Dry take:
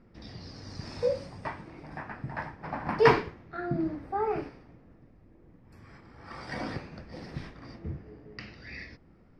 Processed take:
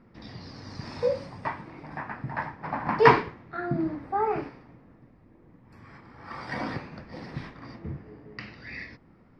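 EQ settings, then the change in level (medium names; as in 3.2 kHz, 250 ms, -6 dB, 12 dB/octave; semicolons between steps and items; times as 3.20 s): ten-band graphic EQ 125 Hz +6 dB, 250 Hz +6 dB, 500 Hz +3 dB, 1 kHz +9 dB, 2 kHz +6 dB, 4 kHz +5 dB; -4.5 dB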